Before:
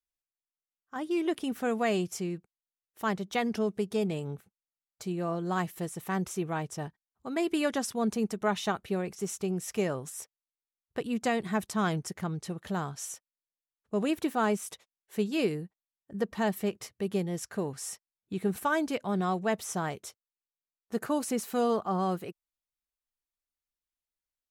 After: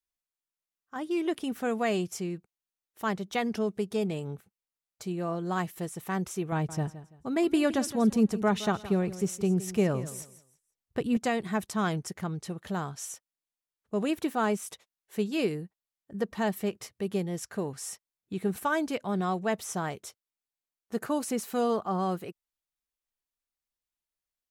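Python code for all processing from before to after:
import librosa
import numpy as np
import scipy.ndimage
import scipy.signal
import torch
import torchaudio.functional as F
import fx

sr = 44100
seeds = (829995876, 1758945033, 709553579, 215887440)

y = fx.chain(x, sr, fx.low_shelf(hz=260.0, db=10.0),
    fx.echo_feedback(ms=167, feedback_pct=26, wet_db=-15.0), at=(6.52, 11.17))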